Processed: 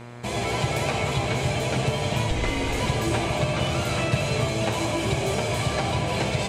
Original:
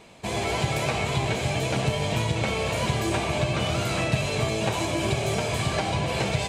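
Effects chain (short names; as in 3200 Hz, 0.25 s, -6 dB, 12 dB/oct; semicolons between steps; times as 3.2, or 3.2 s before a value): 2.3–2.8 frequency shift -170 Hz; echo with dull and thin repeats by turns 0.176 s, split 1300 Hz, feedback 62%, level -7 dB; buzz 120 Hz, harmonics 20, -41 dBFS -5 dB/oct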